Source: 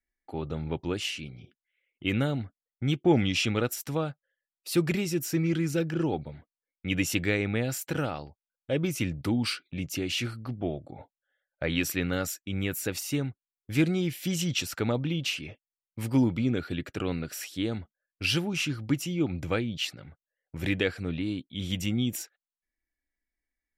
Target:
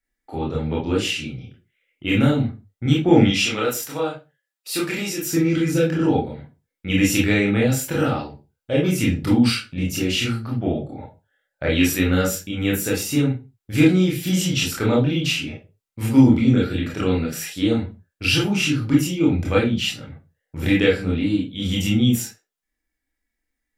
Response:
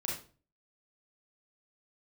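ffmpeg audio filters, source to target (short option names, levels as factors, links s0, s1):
-filter_complex "[0:a]asettb=1/sr,asplit=3[s0][s1][s2];[s0]atrim=end=3.274[s3];[s1]atrim=start=3.27:end=5.27,asetpts=PTS-STARTPTS,afade=t=in:d=0.004:c=qsin,afade=t=out:st=1.996:d=0.004:c=qsin,highpass=f=620:p=1[s4];[s2]atrim=start=5.266[s5];[s3][s4]acrossfade=d=0.004:c1=hsin:c2=qsin[s6];[s6][s5]acrossfade=d=0.004:c1=qsin:c2=hsin[s7];[1:a]atrim=start_sample=2205,afade=t=out:st=0.41:d=0.01,atrim=end_sample=18522,asetrate=61740,aresample=44100[s8];[s7][s8]afir=irnorm=-1:irlink=0,volume=2.66"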